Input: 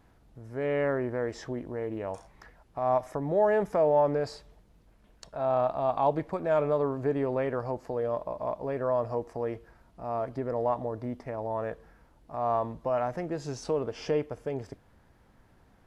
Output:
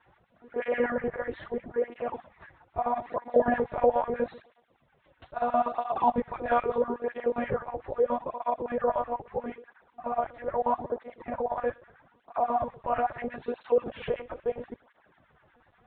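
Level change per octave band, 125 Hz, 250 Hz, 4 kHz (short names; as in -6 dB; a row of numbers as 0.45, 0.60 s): -9.5 dB, -1.0 dB, n/a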